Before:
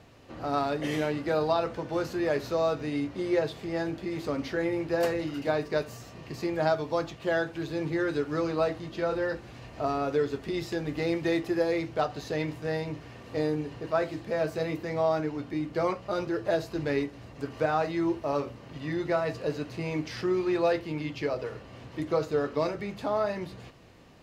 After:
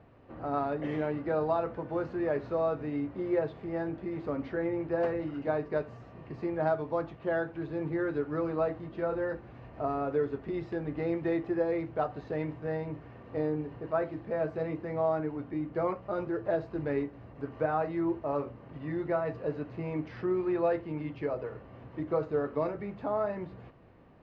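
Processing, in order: low-pass 1.6 kHz 12 dB/octave; trim -2.5 dB

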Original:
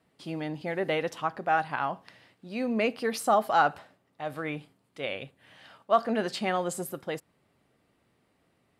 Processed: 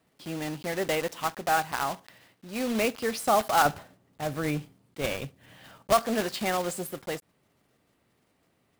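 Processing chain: block-companded coder 3-bit; 3.65–5.93 s: bass shelf 330 Hz +10.5 dB

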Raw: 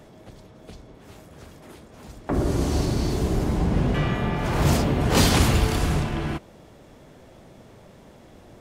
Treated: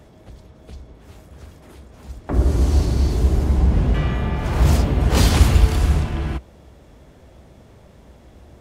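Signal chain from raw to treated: peaking EQ 62 Hz +14.5 dB 0.88 oct; trim -1 dB

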